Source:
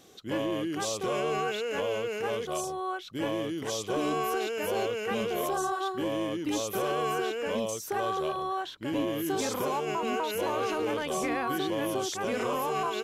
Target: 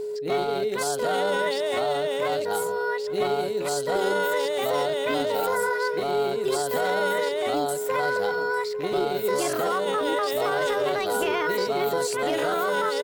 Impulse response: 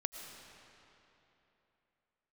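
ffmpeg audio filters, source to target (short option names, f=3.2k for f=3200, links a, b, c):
-filter_complex "[0:a]asplit=2[a][b];[b]adelay=266,lowpass=f=1k:p=1,volume=-22.5dB,asplit=2[c][d];[d]adelay=266,lowpass=f=1k:p=1,volume=0.39,asplit=2[e][f];[f]adelay=266,lowpass=f=1k:p=1,volume=0.39[g];[c][e][g]amix=inputs=3:normalize=0[h];[a][h]amix=inputs=2:normalize=0,asetrate=57191,aresample=44100,atempo=0.771105,aeval=exprs='val(0)+0.0251*sin(2*PI*420*n/s)':c=same,asplit=2[i][j];[j]aecho=0:1:850:0.119[k];[i][k]amix=inputs=2:normalize=0,volume=4dB"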